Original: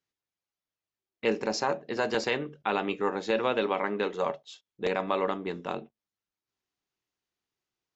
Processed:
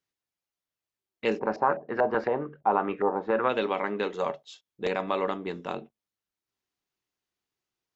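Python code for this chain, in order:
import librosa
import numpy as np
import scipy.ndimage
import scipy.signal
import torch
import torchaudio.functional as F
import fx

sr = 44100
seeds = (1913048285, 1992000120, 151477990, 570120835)

y = fx.filter_lfo_lowpass(x, sr, shape='saw_up', hz=fx.line((1.38, 5.8), (3.48, 1.6)), low_hz=680.0, high_hz=1900.0, q=2.6, at=(1.38, 3.48), fade=0.02)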